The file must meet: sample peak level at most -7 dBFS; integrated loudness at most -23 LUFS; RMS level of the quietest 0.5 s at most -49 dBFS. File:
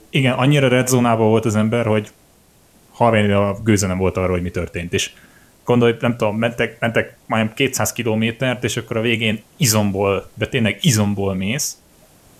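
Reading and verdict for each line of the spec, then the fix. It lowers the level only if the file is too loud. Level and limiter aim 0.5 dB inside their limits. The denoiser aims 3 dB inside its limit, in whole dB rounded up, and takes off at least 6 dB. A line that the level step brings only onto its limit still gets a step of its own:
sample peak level -2.0 dBFS: fail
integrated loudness -18.0 LUFS: fail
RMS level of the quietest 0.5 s -52 dBFS: OK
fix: gain -5.5 dB

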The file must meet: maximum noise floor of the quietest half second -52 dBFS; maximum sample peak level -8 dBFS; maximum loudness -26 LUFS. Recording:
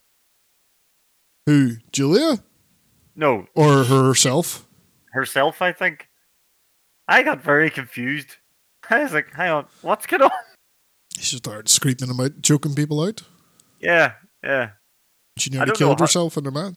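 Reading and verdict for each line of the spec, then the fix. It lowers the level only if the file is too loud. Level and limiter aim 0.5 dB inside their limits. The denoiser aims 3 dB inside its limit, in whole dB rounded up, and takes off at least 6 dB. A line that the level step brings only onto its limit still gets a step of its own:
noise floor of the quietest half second -64 dBFS: OK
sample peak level -3.0 dBFS: fail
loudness -19.0 LUFS: fail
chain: gain -7.5 dB

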